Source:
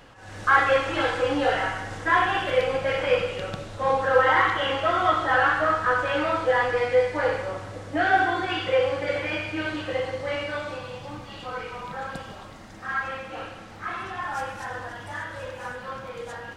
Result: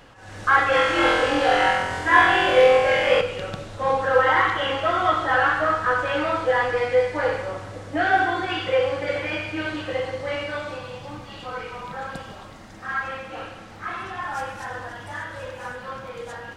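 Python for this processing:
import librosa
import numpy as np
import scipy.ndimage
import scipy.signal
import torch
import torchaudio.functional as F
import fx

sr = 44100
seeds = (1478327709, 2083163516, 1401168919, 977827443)

y = fx.room_flutter(x, sr, wall_m=4.0, rt60_s=1.0, at=(0.7, 3.21))
y = y * librosa.db_to_amplitude(1.0)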